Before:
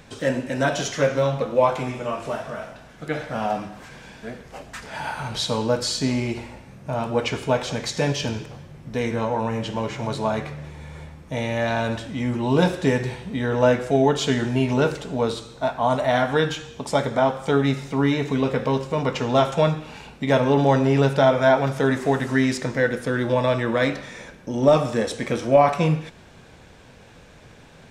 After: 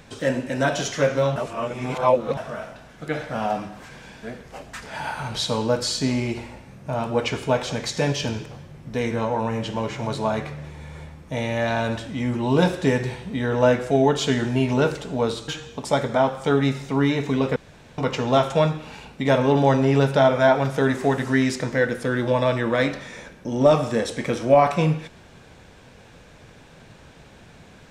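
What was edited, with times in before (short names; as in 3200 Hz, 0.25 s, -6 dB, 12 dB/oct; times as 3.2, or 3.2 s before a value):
1.36–2.37 reverse
15.48–16.5 cut
18.58–19 room tone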